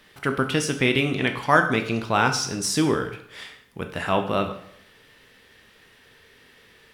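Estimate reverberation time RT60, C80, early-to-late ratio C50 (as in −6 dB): 0.75 s, 13.0 dB, 10.0 dB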